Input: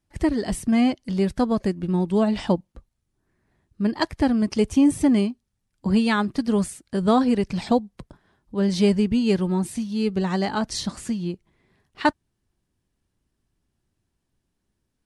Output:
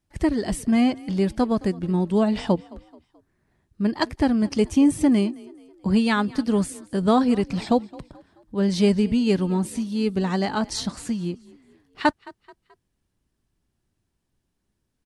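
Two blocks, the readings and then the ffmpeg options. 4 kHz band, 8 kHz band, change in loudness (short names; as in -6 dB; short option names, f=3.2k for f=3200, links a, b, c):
0.0 dB, 0.0 dB, 0.0 dB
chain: -filter_complex "[0:a]asplit=4[a][b][c][d];[b]adelay=216,afreqshift=33,volume=-22dB[e];[c]adelay=432,afreqshift=66,volume=-29.1dB[f];[d]adelay=648,afreqshift=99,volume=-36.3dB[g];[a][e][f][g]amix=inputs=4:normalize=0"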